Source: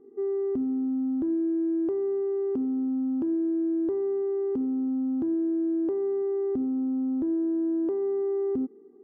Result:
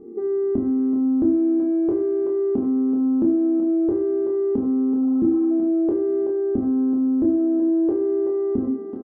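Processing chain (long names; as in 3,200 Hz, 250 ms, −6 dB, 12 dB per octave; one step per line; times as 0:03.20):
tilt shelving filter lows +7 dB
notch filter 390 Hz, Q 13
double-tracking delay 26 ms −4 dB
on a send: feedback echo with a high-pass in the loop 379 ms, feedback 47%, high-pass 550 Hz, level −6 dB
on the sum: convolution reverb RT60 0.35 s, pre-delay 5 ms, DRR 2.5 dB
in parallel at +3 dB: brickwall limiter −25.5 dBFS, peak gain reduction 12.5 dB
on the sum: healed spectral selection 0:05.04–0:05.48, 620–1,600 Hz before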